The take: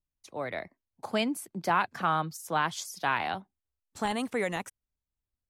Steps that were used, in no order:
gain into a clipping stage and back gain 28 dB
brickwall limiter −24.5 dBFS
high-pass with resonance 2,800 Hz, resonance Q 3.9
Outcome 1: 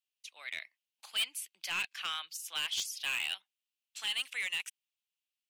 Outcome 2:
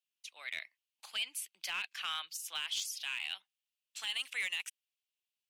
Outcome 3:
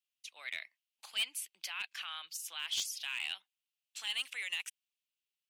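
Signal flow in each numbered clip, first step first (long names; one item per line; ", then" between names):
high-pass with resonance, then gain into a clipping stage and back, then brickwall limiter
high-pass with resonance, then brickwall limiter, then gain into a clipping stage and back
brickwall limiter, then high-pass with resonance, then gain into a clipping stage and back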